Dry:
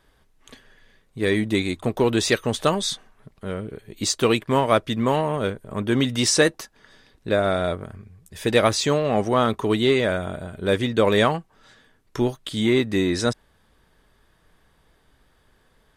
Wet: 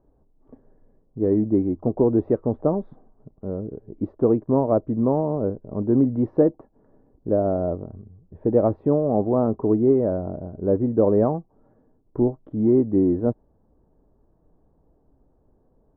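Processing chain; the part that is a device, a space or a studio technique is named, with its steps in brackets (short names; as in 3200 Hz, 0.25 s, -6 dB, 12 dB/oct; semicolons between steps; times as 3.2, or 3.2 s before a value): under water (LPF 770 Hz 24 dB/oct; bell 290 Hz +5 dB 0.52 oct)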